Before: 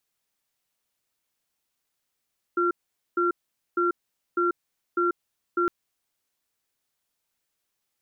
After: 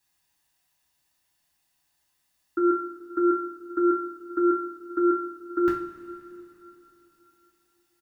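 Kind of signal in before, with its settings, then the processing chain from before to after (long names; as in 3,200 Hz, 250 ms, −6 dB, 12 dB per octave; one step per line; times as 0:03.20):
tone pair in a cadence 350 Hz, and 1,370 Hz, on 0.14 s, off 0.46 s, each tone −23 dBFS 3.11 s
comb filter 1.1 ms, depth 45%
coupled-rooms reverb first 0.4 s, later 3.5 s, from −18 dB, DRR −4.5 dB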